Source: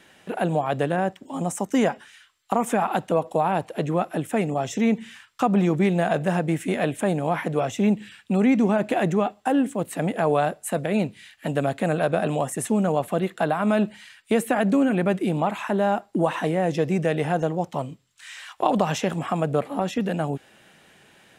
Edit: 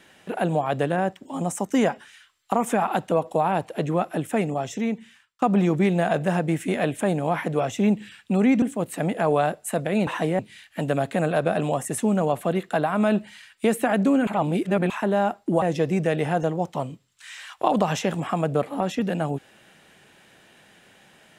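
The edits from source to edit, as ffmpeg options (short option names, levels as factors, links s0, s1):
-filter_complex "[0:a]asplit=8[s0][s1][s2][s3][s4][s5][s6][s7];[s0]atrim=end=5.42,asetpts=PTS-STARTPTS,afade=t=out:st=4.39:d=1.03:silence=0.0749894[s8];[s1]atrim=start=5.42:end=8.622,asetpts=PTS-STARTPTS,afade=t=in:d=0.004:c=hsin:silence=0.0749894[s9];[s2]atrim=start=9.608:end=11.062[s10];[s3]atrim=start=16.288:end=16.612[s11];[s4]atrim=start=11.058:end=14.942[s12];[s5]atrim=start=14.938:end=15.572,asetpts=PTS-STARTPTS,areverse[s13];[s6]atrim=start=15.568:end=16.292[s14];[s7]atrim=start=16.608[s15];[s8][s9]concat=n=2:v=0:a=1[s16];[s16][s10]acrossfade=d=0.004:c1=hsin:c2=hsin[s17];[s17][s11]acrossfade=d=0.004:c1=hsin:c2=hsin[s18];[s18][s12]acrossfade=d=0.004:c1=hsin:c2=hsin[s19];[s19][s13]acrossfade=d=0.004:c1=hsin:c2=hsin[s20];[s20][s14]acrossfade=d=0.004:c1=hsin:c2=hsin[s21];[s21][s15]acrossfade=d=0.004:c1=hsin:c2=hsin"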